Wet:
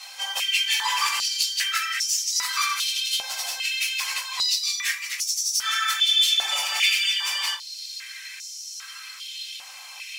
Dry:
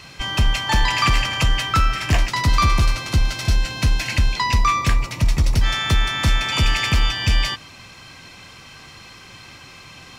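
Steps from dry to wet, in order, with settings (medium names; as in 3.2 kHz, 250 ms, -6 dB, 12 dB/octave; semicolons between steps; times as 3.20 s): phase randomisation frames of 50 ms; differentiator; in parallel at +1 dB: compression, threshold -44 dBFS, peak gain reduction 18 dB; on the sum: Chebyshev shaper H 2 -17 dB, 6 -24 dB, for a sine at -14 dBFS; on a send at -3 dB: reverberation RT60 0.25 s, pre-delay 4 ms; on the sum: step-sequenced high-pass 2.5 Hz 750–5800 Hz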